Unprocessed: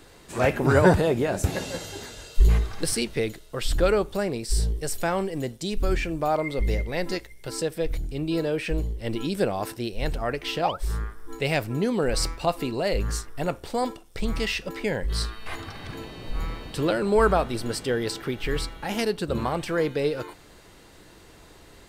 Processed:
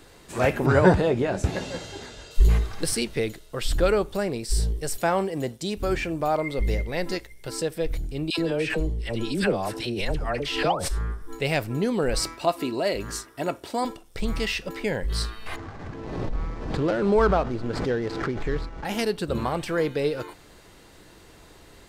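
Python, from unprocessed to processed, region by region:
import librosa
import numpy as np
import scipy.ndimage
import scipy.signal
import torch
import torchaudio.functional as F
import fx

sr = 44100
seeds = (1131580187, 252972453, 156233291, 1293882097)

y = fx.chain(x, sr, fx.air_absorb(metres=63.0),
    fx.doubler(ms=16.0, db=-13.0), at=(0.66, 2.31))
y = fx.chain(y, sr, fx.highpass(hz=61.0, slope=12),
    fx.dynamic_eq(hz=800.0, q=0.89, threshold_db=-38.0, ratio=4.0, max_db=4), at=(4.98, 6.21))
y = fx.chain(y, sr, fx.lowpass(hz=11000.0, slope=12),
    fx.dispersion(late='lows', ms=82.0, hz=1000.0),
    fx.pre_swell(db_per_s=59.0), at=(8.3, 11.22))
y = fx.chain(y, sr, fx.highpass(hz=130.0, slope=12),
    fx.comb(ms=3.1, depth=0.36), at=(12.19, 13.85))
y = fx.chain(y, sr, fx.median_filter(points=15),
    fx.air_absorb(metres=80.0),
    fx.pre_swell(db_per_s=44.0), at=(15.56, 18.85))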